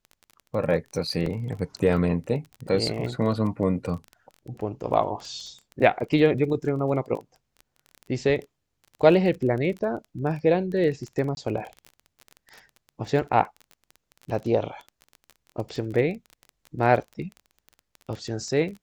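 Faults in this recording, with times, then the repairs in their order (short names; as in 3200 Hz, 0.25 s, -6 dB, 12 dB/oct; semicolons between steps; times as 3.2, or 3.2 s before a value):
crackle 20/s -32 dBFS
1.26 gap 3.2 ms
11.35–11.37 gap 21 ms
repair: de-click; interpolate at 1.26, 3.2 ms; interpolate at 11.35, 21 ms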